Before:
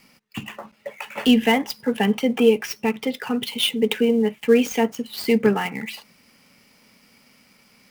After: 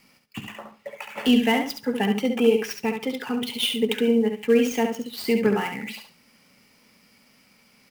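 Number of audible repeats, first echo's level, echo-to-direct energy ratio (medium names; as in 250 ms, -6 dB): 3, -6.0 dB, -6.0 dB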